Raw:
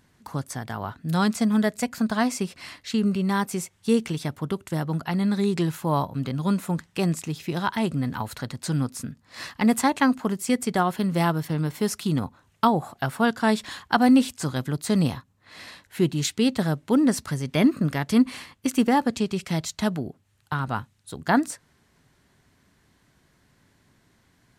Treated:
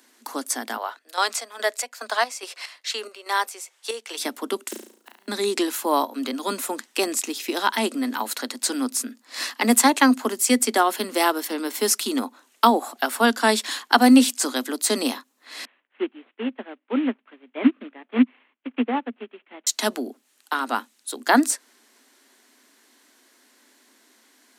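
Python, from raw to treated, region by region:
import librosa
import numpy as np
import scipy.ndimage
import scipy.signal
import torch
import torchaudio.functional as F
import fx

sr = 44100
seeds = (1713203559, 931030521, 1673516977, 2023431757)

y = fx.chain(x, sr, fx.highpass(hz=490.0, slope=24),
    fx.high_shelf(hz=7600.0, db=-8.5),
    fx.chopper(hz=2.4, depth_pct=65, duty_pct=55), at=(0.76, 4.18))
y = fx.chain(y, sr, fx.block_float(bits=5),
    fx.gate_flip(shuts_db=-21.0, range_db=-38),
    fx.room_flutter(wall_m=6.1, rt60_s=0.54), at=(4.69, 5.28))
y = fx.chain(y, sr, fx.cvsd(bps=16000),
    fx.upward_expand(threshold_db=-29.0, expansion=2.5), at=(15.65, 19.67))
y = scipy.signal.sosfilt(scipy.signal.butter(16, 230.0, 'highpass', fs=sr, output='sos'), y)
y = fx.high_shelf(y, sr, hz=3200.0, db=9.5)
y = y * librosa.db_to_amplitude(3.5)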